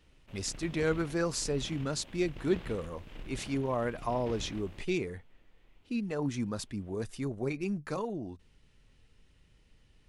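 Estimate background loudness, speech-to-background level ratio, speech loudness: -48.5 LUFS, 14.0 dB, -34.5 LUFS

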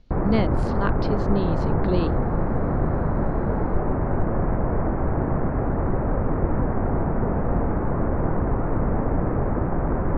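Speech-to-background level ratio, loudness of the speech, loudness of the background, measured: -3.0 dB, -28.0 LUFS, -25.0 LUFS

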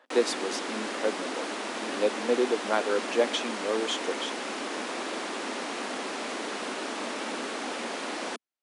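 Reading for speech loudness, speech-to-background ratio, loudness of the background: -30.5 LUFS, 3.0 dB, -33.5 LUFS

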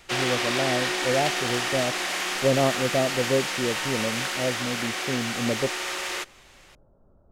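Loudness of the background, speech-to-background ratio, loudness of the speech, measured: -26.5 LUFS, -1.5 dB, -28.0 LUFS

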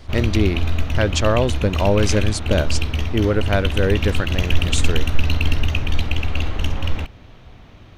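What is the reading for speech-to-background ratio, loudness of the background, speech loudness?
1.5 dB, -23.5 LUFS, -22.0 LUFS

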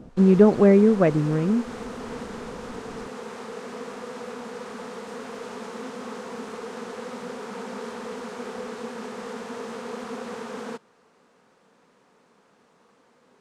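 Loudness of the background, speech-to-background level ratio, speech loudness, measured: -36.0 LUFS, 17.5 dB, -18.5 LUFS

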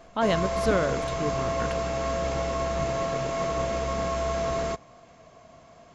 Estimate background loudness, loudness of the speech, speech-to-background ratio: -28.5 LUFS, -29.5 LUFS, -1.0 dB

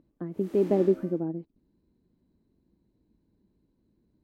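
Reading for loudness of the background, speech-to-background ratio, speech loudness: -43.5 LUFS, 16.5 dB, -27.0 LUFS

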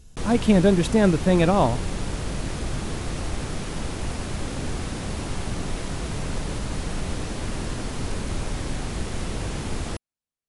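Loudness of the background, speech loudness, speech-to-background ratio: -31.0 LUFS, -20.0 LUFS, 11.0 dB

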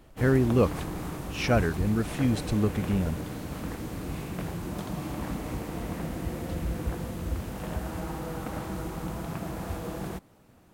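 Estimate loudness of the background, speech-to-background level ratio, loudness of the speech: -35.0 LUFS, 8.0 dB, -27.0 LUFS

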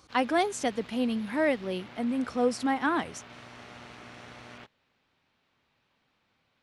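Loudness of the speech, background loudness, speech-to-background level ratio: -29.0 LUFS, -48.0 LUFS, 19.0 dB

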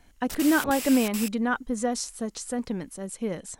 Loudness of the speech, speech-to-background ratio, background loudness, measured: -27.0 LUFS, 6.5 dB, -33.5 LUFS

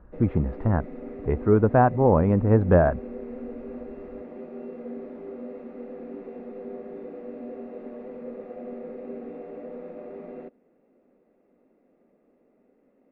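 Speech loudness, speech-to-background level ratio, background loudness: -21.5 LUFS, 17.5 dB, -39.0 LUFS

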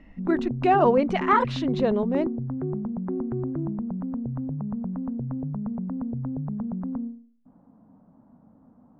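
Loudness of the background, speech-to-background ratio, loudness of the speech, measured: -31.0 LUFS, 7.5 dB, -23.5 LUFS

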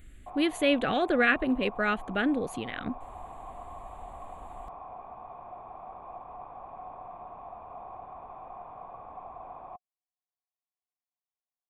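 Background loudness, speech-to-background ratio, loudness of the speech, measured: -44.5 LUFS, 16.5 dB, -28.0 LUFS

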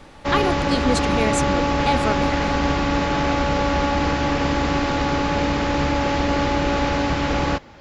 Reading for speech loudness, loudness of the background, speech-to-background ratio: -25.5 LUFS, -21.0 LUFS, -4.5 dB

